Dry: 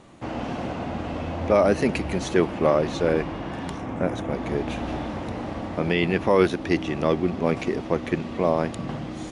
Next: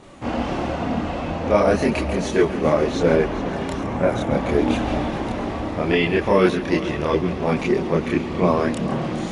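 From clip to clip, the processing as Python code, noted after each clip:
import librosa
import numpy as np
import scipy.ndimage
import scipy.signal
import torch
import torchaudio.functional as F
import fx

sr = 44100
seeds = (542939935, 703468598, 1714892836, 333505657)

y = fx.rider(x, sr, range_db=3, speed_s=2.0)
y = fx.chorus_voices(y, sr, voices=4, hz=0.4, base_ms=28, depth_ms=2.8, mix_pct=55)
y = fx.echo_heads(y, sr, ms=138, heads='first and third', feedback_pct=68, wet_db=-16)
y = y * 10.0 ** (6.5 / 20.0)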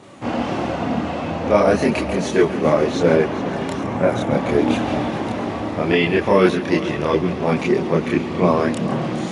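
y = scipy.signal.sosfilt(scipy.signal.butter(4, 87.0, 'highpass', fs=sr, output='sos'), x)
y = y * 10.0 ** (2.0 / 20.0)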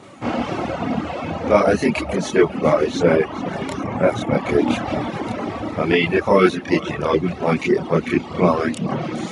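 y = fx.dereverb_blind(x, sr, rt60_s=0.96)
y = fx.small_body(y, sr, hz=(1300.0, 2200.0), ring_ms=45, db=7)
y = y * 10.0 ** (1.0 / 20.0)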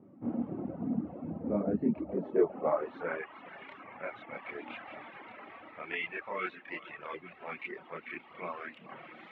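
y = fx.air_absorb(x, sr, metres=500.0)
y = fx.filter_sweep_bandpass(y, sr, from_hz=230.0, to_hz=2300.0, start_s=1.91, end_s=3.34, q=1.5)
y = y * 10.0 ** (-7.5 / 20.0)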